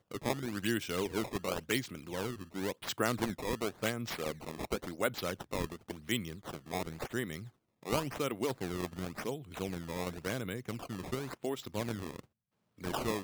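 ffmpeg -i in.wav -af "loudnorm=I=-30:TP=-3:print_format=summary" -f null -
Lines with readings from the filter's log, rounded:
Input Integrated:    -37.5 LUFS
Input True Peak:     -13.9 dBTP
Input LRA:             3.0 LU
Input Threshold:     -47.7 LUFS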